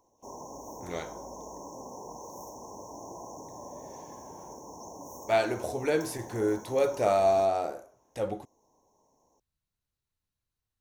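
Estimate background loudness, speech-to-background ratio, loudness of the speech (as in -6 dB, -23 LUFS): -44.5 LUFS, 16.0 dB, -28.5 LUFS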